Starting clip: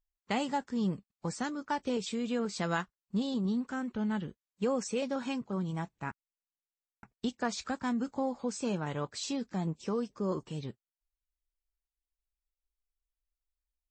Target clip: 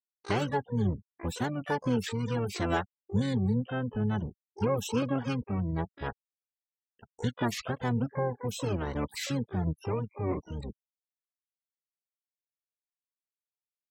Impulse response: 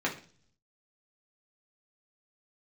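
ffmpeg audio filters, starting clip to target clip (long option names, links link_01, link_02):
-filter_complex "[0:a]afftfilt=real='re*gte(hypot(re,im),0.01)':imag='im*gte(hypot(re,im),0.01)':win_size=1024:overlap=0.75,asplit=4[link_01][link_02][link_03][link_04];[link_02]asetrate=22050,aresample=44100,atempo=2,volume=0dB[link_05];[link_03]asetrate=29433,aresample=44100,atempo=1.49831,volume=-18dB[link_06];[link_04]asetrate=88200,aresample=44100,atempo=0.5,volume=-10dB[link_07];[link_01][link_05][link_06][link_07]amix=inputs=4:normalize=0"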